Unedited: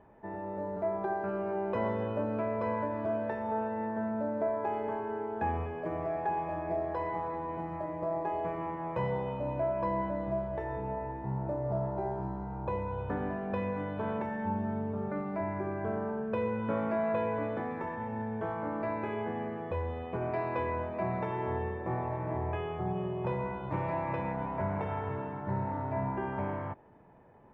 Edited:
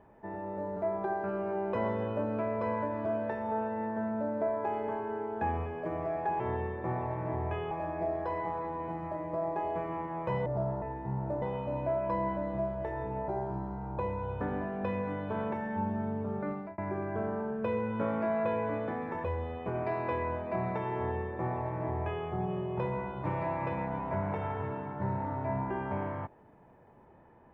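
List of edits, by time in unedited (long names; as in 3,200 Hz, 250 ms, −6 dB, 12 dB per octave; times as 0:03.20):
0:09.15–0:11.01: swap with 0:11.61–0:11.97
0:15.21–0:15.47: fade out
0:17.93–0:19.71: remove
0:21.42–0:22.73: duplicate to 0:06.40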